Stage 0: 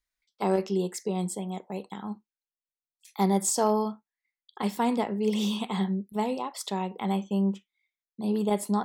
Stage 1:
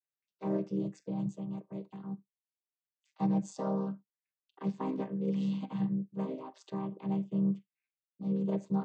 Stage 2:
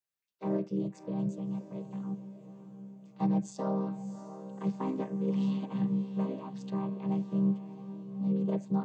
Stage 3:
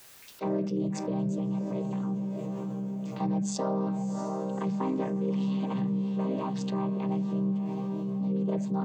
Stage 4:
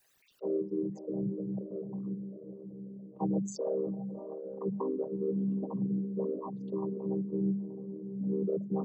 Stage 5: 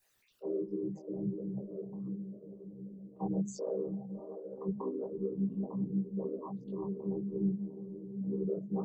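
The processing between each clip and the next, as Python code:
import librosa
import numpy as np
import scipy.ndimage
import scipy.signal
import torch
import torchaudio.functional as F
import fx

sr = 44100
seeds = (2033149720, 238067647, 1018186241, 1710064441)

y1 = fx.chord_vocoder(x, sr, chord='minor triad', root=48)
y1 = y1 * 10.0 ** (-4.5 / 20.0)
y2 = fx.echo_diffused(y1, sr, ms=644, feedback_pct=47, wet_db=-11.5)
y2 = y2 * 10.0 ** (1.0 / 20.0)
y3 = fx.hum_notches(y2, sr, base_hz=50, count=4)
y3 = fx.env_flatten(y3, sr, amount_pct=70)
y4 = fx.envelope_sharpen(y3, sr, power=3.0)
y4 = fx.upward_expand(y4, sr, threshold_db=-38.0, expansion=2.5)
y5 = fx.low_shelf(y4, sr, hz=64.0, db=9.0)
y5 = fx.detune_double(y5, sr, cents=47)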